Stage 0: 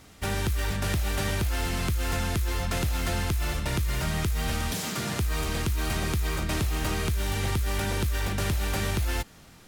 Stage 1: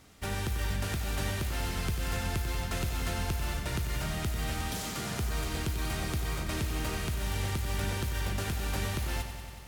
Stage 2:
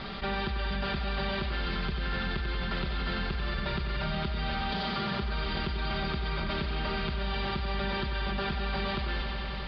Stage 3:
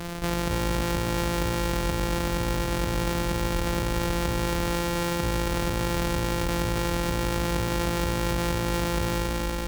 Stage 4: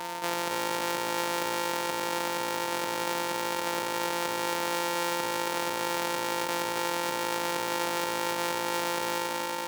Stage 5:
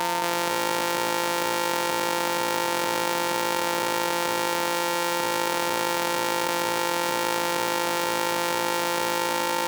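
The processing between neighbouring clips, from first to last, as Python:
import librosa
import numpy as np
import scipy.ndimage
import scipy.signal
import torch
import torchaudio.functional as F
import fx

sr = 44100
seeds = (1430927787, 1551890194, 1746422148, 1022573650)

y1 = fx.echo_crushed(x, sr, ms=93, feedback_pct=80, bits=9, wet_db=-9.5)
y1 = y1 * 10.0 ** (-5.5 / 20.0)
y2 = scipy.signal.sosfilt(scipy.signal.cheby1(6, 3, 4800.0, 'lowpass', fs=sr, output='sos'), y1)
y2 = y2 + 0.78 * np.pad(y2, (int(5.1 * sr / 1000.0), 0))[:len(y2)]
y2 = fx.env_flatten(y2, sr, amount_pct=70)
y3 = np.r_[np.sort(y2[:len(y2) // 256 * 256].reshape(-1, 256), axis=1).ravel(), y2[len(y2) // 256 * 256:]]
y3 = y3 + 10.0 ** (-4.0 / 20.0) * np.pad(y3, (int(275 * sr / 1000.0), 0))[:len(y3)]
y3 = y3 * 10.0 ** (4.5 / 20.0)
y4 = scipy.signal.sosfilt(scipy.signal.butter(2, 440.0, 'highpass', fs=sr, output='sos'), y3)
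y4 = y4 + 10.0 ** (-36.0 / 20.0) * np.sin(2.0 * np.pi * 910.0 * np.arange(len(y4)) / sr)
y5 = fx.env_flatten(y4, sr, amount_pct=100)
y5 = y5 * 10.0 ** (2.5 / 20.0)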